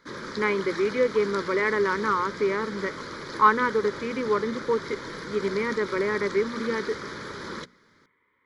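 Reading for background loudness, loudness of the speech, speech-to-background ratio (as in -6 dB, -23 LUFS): -36.5 LUFS, -26.0 LUFS, 10.5 dB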